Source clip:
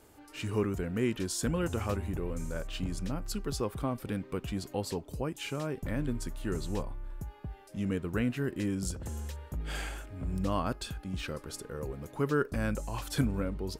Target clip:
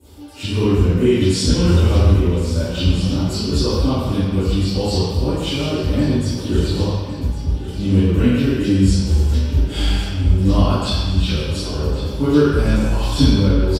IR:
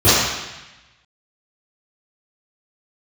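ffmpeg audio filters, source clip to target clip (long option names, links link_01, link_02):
-filter_complex "[0:a]acrossover=split=9700[link_01][link_02];[link_02]acompressor=threshold=-58dB:ratio=4:attack=1:release=60[link_03];[link_01][link_03]amix=inputs=2:normalize=0,highshelf=frequency=2600:width_type=q:width=1.5:gain=6.5,aecho=1:1:1108|2216|3324|4432:0.224|0.094|0.0395|0.0166[link_04];[1:a]atrim=start_sample=2205,asetrate=35721,aresample=44100[link_05];[link_04][link_05]afir=irnorm=-1:irlink=0,volume=-17dB"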